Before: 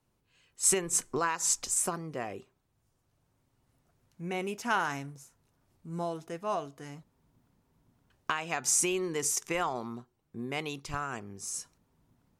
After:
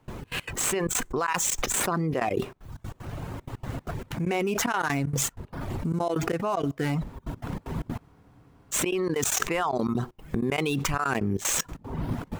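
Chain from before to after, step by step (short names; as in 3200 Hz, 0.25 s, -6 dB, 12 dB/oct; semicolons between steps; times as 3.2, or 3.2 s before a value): median filter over 9 samples; reverb removal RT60 0.56 s; step gate ".xx.x.xxxxx.x.xx" 190 bpm -24 dB; spectral freeze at 8.01, 0.74 s; fast leveller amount 100%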